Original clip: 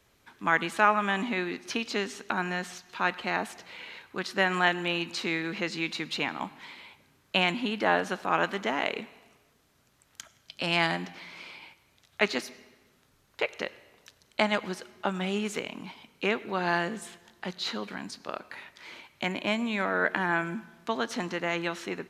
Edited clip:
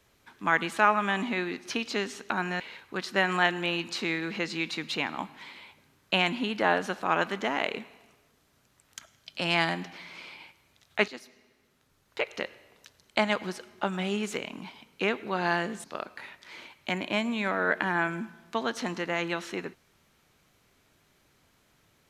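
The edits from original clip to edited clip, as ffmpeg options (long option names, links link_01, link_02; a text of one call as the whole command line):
ffmpeg -i in.wav -filter_complex "[0:a]asplit=4[link_01][link_02][link_03][link_04];[link_01]atrim=end=2.602[link_05];[link_02]atrim=start=3.818:end=12.3,asetpts=PTS-STARTPTS,afade=type=out:start_time=8.478:duration=0.004:curve=hsin:silence=0.223872[link_06];[link_03]atrim=start=12.3:end=17.062,asetpts=PTS-STARTPTS,afade=type=in:duration=1.3:silence=0.223872[link_07];[link_04]atrim=start=18.178[link_08];[link_06][link_07]concat=n=2:v=0:a=1[link_09];[link_05][link_09]acrossfade=duration=0.004:curve1=hsin:curve2=hsin[link_10];[link_10][link_08]acrossfade=duration=0.004:curve1=hsin:curve2=hsin" out.wav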